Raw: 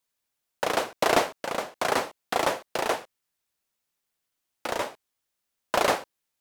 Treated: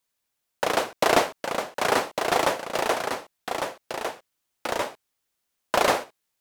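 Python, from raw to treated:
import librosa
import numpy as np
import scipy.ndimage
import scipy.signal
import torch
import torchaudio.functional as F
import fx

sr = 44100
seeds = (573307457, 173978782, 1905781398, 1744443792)

y = x + 10.0 ** (-6.0 / 20.0) * np.pad(x, (int(1153 * sr / 1000.0), 0))[:len(x)]
y = F.gain(torch.from_numpy(y), 2.0).numpy()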